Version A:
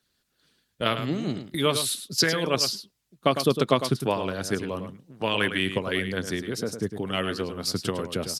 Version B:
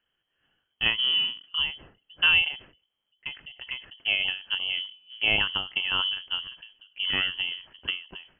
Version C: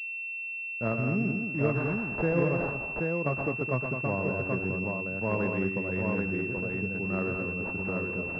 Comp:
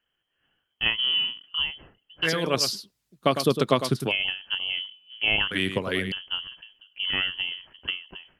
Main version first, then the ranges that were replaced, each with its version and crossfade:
B
2.25–4.1 from A, crossfade 0.06 s
5.51–6.12 from A
not used: C

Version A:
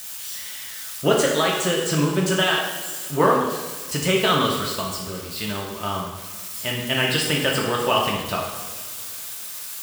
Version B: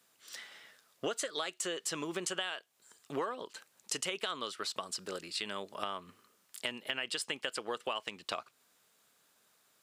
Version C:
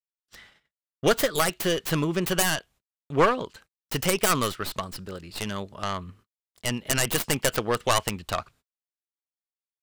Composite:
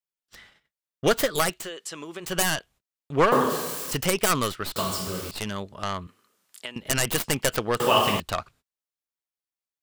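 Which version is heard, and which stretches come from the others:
C
1.59–2.3 from B, crossfade 0.24 s
3.32–3.93 from A
4.76–5.31 from A
6.07–6.76 from B
7.8–8.2 from A

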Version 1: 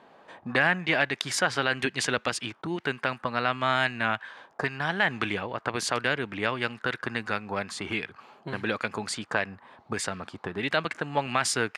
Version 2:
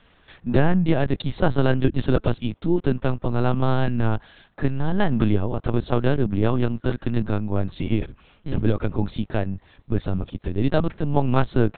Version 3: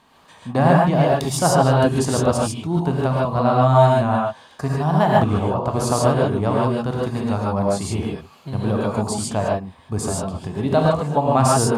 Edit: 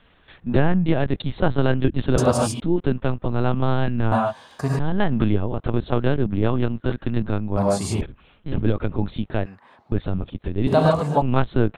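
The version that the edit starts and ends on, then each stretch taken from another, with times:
2
2.18–2.6 from 3
4.12–4.79 from 3
7.57–8.01 from 3
9.46–9.92 from 1
10.67–11.22 from 3

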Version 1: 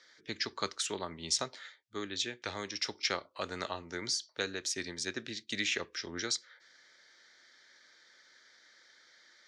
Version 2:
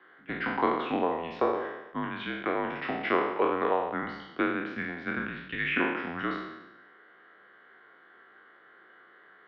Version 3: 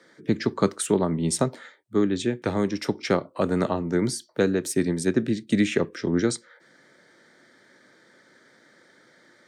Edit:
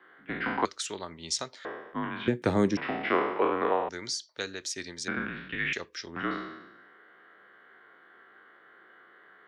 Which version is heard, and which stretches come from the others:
2
0.65–1.65 from 1
2.28–2.77 from 3
3.89–5.08 from 1
5.73–6.16 from 1

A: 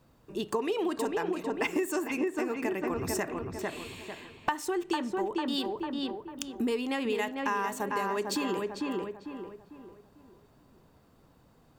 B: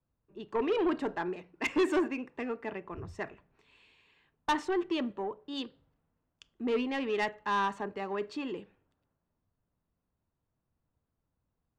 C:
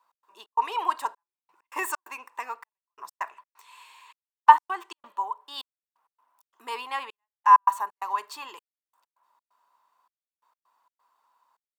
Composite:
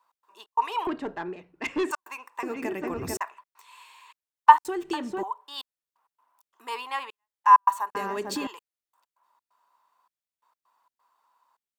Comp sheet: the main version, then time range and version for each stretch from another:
C
0.87–1.91 from B
2.43–3.17 from A
4.65–5.23 from A
7.95–8.47 from A

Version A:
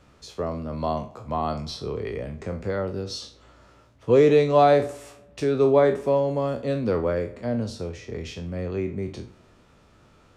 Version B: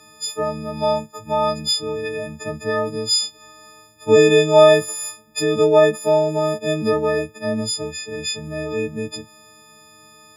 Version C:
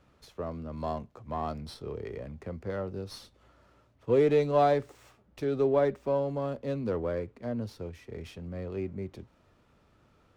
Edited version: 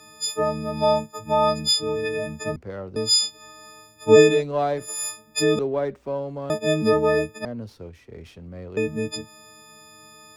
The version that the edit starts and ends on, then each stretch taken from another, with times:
B
2.56–2.96 from C
4.32–4.88 from C, crossfade 0.24 s
5.59–6.5 from C
7.45–8.77 from C
not used: A

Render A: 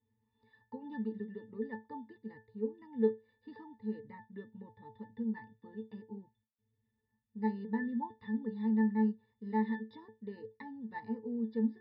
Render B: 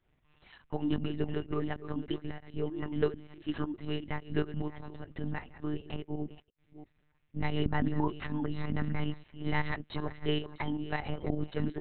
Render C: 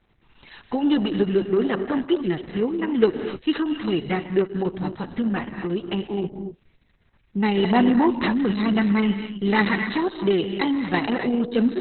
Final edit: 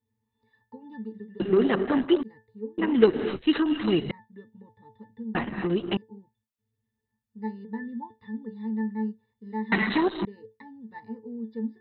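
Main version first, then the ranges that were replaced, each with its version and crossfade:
A
1.4–2.23 from C
2.78–4.11 from C
5.35–5.97 from C
9.72–10.25 from C
not used: B

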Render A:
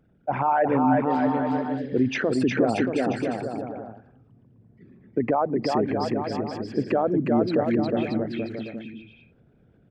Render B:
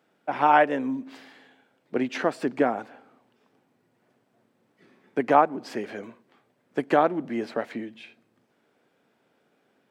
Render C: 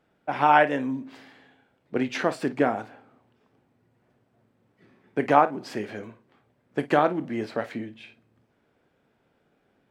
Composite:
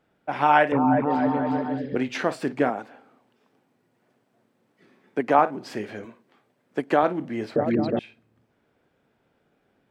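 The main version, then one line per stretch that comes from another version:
C
0.72–1.95 from A
2.7–5.39 from B
6.05–7.03 from B
7.56–7.99 from A

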